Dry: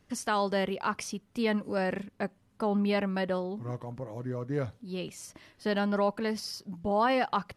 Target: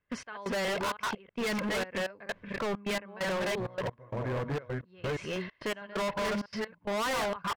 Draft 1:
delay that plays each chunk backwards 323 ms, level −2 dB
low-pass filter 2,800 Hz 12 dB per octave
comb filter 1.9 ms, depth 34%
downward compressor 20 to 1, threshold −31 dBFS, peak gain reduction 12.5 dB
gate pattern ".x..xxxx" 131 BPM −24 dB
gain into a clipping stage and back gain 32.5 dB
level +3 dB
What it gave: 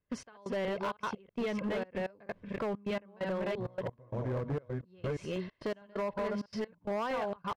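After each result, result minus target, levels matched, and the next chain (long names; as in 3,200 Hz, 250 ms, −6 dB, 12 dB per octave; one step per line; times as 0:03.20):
downward compressor: peak gain reduction +12.5 dB; 2,000 Hz band −5.0 dB
delay that plays each chunk backwards 323 ms, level −2 dB
low-pass filter 2,800 Hz 12 dB per octave
comb filter 1.9 ms, depth 34%
gate pattern ".x..xxxx" 131 BPM −24 dB
gain into a clipping stage and back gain 32.5 dB
level +3 dB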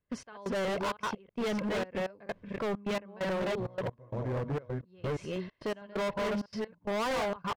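2,000 Hz band −3.5 dB
delay that plays each chunk backwards 323 ms, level −2 dB
low-pass filter 2,800 Hz 12 dB per octave
parametric band 1,900 Hz +10 dB 2.1 octaves
comb filter 1.9 ms, depth 34%
gate pattern ".x..xxxx" 131 BPM −24 dB
gain into a clipping stage and back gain 32.5 dB
level +3 dB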